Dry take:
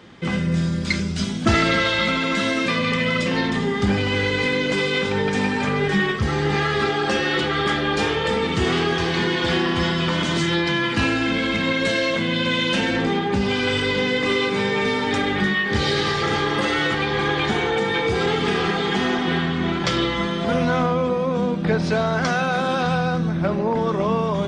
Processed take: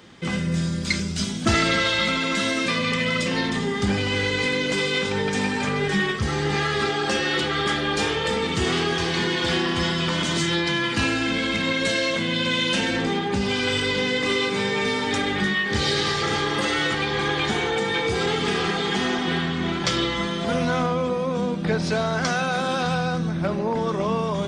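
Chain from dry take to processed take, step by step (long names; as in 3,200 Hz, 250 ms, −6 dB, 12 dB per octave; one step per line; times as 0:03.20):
high-shelf EQ 5,500 Hz +11.5 dB
level −3 dB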